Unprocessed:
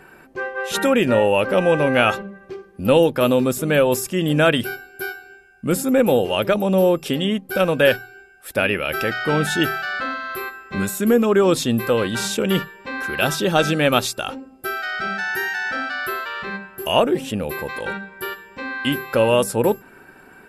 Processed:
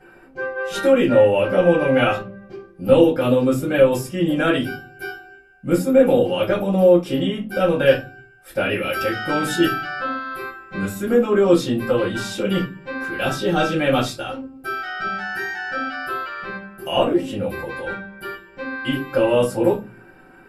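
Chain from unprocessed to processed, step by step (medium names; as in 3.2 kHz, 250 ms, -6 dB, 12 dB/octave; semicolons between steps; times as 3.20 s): treble shelf 5.6 kHz -4 dB, from 8.70 s +6 dB, from 9.73 s -4.5 dB; reverberation RT60 0.25 s, pre-delay 4 ms, DRR -6.5 dB; trim -13 dB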